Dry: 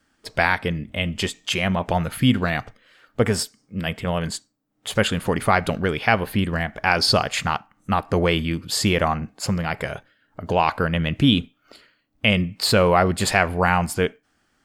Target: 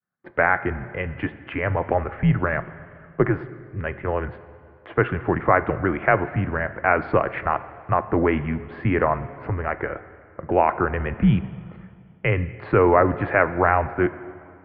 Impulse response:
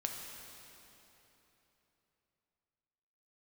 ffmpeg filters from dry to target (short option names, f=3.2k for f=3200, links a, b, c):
-filter_complex "[0:a]highpass=f=190:t=q:w=0.5412,highpass=f=190:t=q:w=1.307,lowpass=f=2.1k:t=q:w=0.5176,lowpass=f=2.1k:t=q:w=0.7071,lowpass=f=2.1k:t=q:w=1.932,afreqshift=-91,agate=range=-33dB:threshold=-54dB:ratio=3:detection=peak,asplit=2[a][b];[1:a]atrim=start_sample=2205,asetrate=66150,aresample=44100[c];[b][c]afir=irnorm=-1:irlink=0,volume=-5.5dB[d];[a][d]amix=inputs=2:normalize=0,volume=-1dB"